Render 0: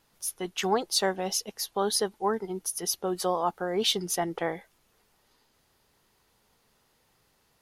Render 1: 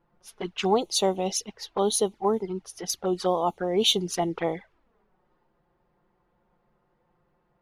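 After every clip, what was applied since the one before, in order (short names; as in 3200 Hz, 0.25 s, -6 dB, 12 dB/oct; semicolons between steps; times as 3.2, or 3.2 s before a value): low-pass opened by the level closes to 1100 Hz, open at -23 dBFS; envelope flanger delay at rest 5.8 ms, full sweep at -26 dBFS; gain +5 dB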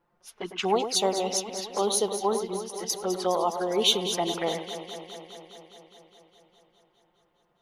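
low shelf 230 Hz -9.5 dB; on a send: echo with dull and thin repeats by turns 0.103 s, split 2400 Hz, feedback 85%, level -9 dB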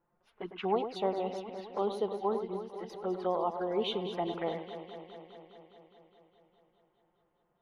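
air absorption 480 m; gain -4 dB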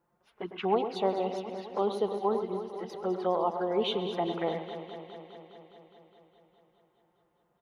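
HPF 45 Hz; feedback echo 0.133 s, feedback 59%, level -17 dB; gain +3 dB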